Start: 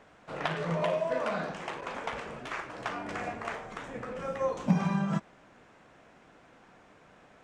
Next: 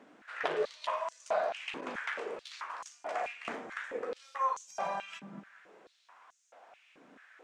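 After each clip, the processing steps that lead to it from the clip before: dark delay 0.215 s, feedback 36%, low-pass 1900 Hz, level -16 dB; stepped high-pass 4.6 Hz 260–6500 Hz; gain -4 dB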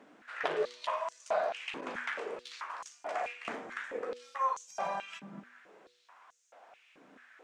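de-hum 122.2 Hz, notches 4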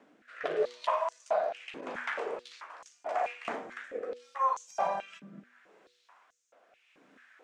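dynamic EQ 750 Hz, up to +7 dB, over -46 dBFS, Q 0.85; rotary speaker horn 0.8 Hz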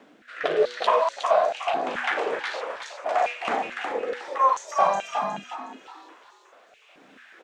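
bell 3600 Hz +4.5 dB 0.88 oct; on a send: frequency-shifting echo 0.364 s, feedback 33%, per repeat +61 Hz, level -5.5 dB; on the sum: gain +8 dB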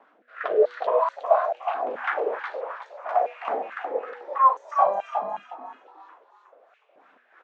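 wah 3 Hz 460–1300 Hz, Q 2.4; gain +4 dB

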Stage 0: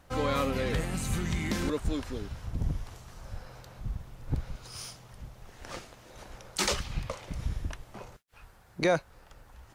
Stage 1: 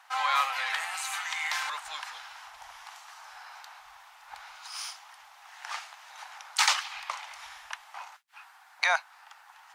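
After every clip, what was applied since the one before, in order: elliptic high-pass 800 Hz, stop band 50 dB; high shelf 6400 Hz -8.5 dB; gain +8.5 dB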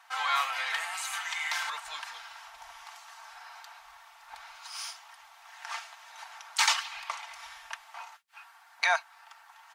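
comb 4.4 ms, depth 57%; gain -2 dB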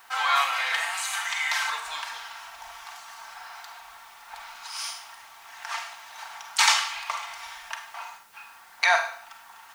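added noise white -65 dBFS; Schroeder reverb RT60 0.54 s, combs from 33 ms, DRR 5 dB; gain +4.5 dB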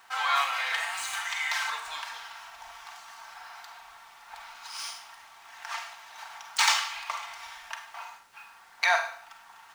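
median filter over 3 samples; gain -3 dB

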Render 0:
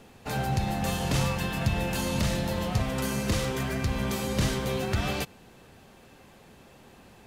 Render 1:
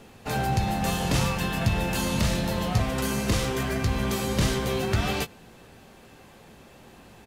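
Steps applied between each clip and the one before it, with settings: doubler 18 ms -10 dB; gain +2.5 dB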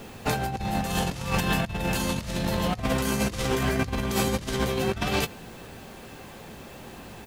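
added noise violet -67 dBFS; negative-ratio compressor -29 dBFS, ratio -0.5; gain +3 dB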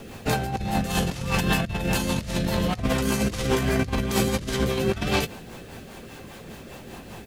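rotary speaker horn 5 Hz; gain +4 dB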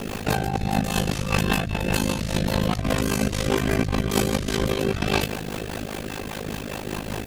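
in parallel at -2 dB: negative-ratio compressor -36 dBFS, ratio -1; on the sum: AM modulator 52 Hz, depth 90%; gain +4 dB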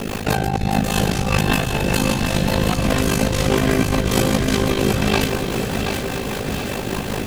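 in parallel at 0 dB: limiter -13 dBFS, peak gain reduction 7.5 dB; on the sum: lo-fi delay 0.727 s, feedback 55%, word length 7-bit, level -6 dB; gain -1 dB

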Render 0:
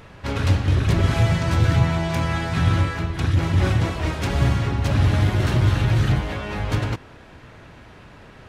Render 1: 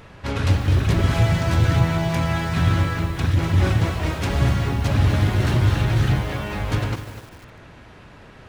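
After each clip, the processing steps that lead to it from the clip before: lo-fi delay 0.249 s, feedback 35%, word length 6-bit, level -11 dB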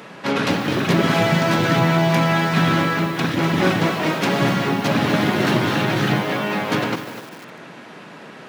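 steep high-pass 160 Hz 36 dB/oct; dynamic EQ 8500 Hz, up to -6 dB, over -55 dBFS, Q 1.1; gain +7.5 dB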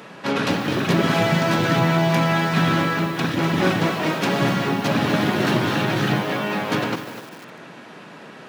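notch 2100 Hz, Q 29; gain -1.5 dB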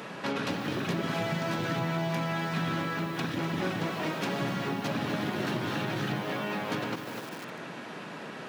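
compressor 2.5:1, threshold -34 dBFS, peak gain reduction 13 dB

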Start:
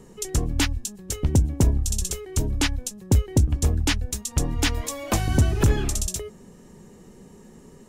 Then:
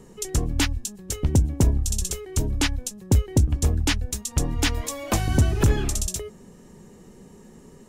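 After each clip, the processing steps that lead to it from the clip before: nothing audible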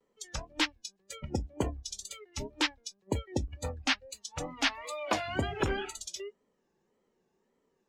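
wow and flutter 130 cents; spectral noise reduction 20 dB; three-band isolator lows -15 dB, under 320 Hz, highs -22 dB, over 5800 Hz; gain -2 dB

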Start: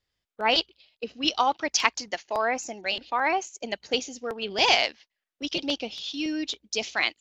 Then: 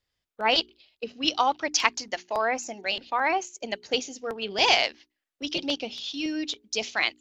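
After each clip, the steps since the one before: notches 60/120/180/240/300/360/420 Hz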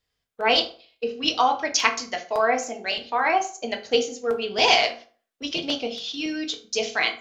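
reverb RT60 0.40 s, pre-delay 3 ms, DRR 2 dB; gain +1 dB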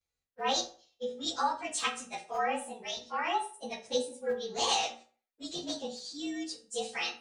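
inharmonic rescaling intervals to 110%; gain -7 dB

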